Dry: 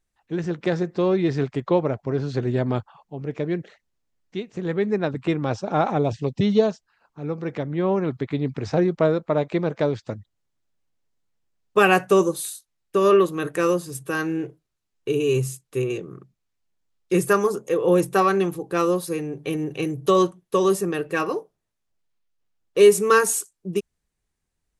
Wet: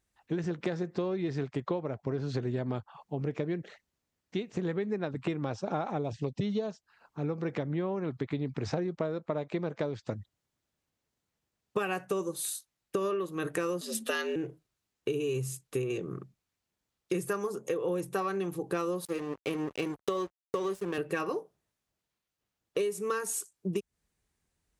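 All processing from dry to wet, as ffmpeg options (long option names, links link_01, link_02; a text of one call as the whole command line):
ffmpeg -i in.wav -filter_complex "[0:a]asettb=1/sr,asplit=3[link_01][link_02][link_03];[link_01]atrim=end=13.814[link_04];[link_02]atrim=start=13.81:end=14.36,asetpts=PTS-STARTPTS,afade=type=in:duration=0.004:curve=qsin,afade=type=out:start_time=0.546:duration=0.004:curve=qsin,equalizer=frequency=3500:width=1.1:gain=13.5,afreqshift=90[link_05];[link_03]atrim=start=14.356[link_06];[link_04][link_05]acrossfade=duration=0.004:curve1=hsin:curve2=qsin[link_07];[link_07][link_06]acrossfade=duration=0.004:curve1=qsin:curve2=hsin,asettb=1/sr,asplit=3[link_08][link_09][link_10];[link_08]atrim=end=19.054[link_11];[link_09]atrim=start=19.05:end=20.98,asetpts=PTS-STARTPTS,afade=type=in:duration=0.004:curve=qsin,afade=type=out:start_time=1.926:duration=0.004:curve=qsin,highpass=200,highshelf=frequency=6900:gain=-8,aeval=exprs='sgn(val(0))*max(abs(val(0))-0.0178,0)':channel_layout=same[link_12];[link_10]atrim=start=20.976[link_13];[link_11][link_12]acrossfade=duration=0.004:curve1=hsin:curve2=qsin[link_14];[link_14][link_13]acrossfade=duration=0.004:curve1=qsin:curve2=hsin,acompressor=threshold=-30dB:ratio=12,highpass=44,volume=1.5dB" out.wav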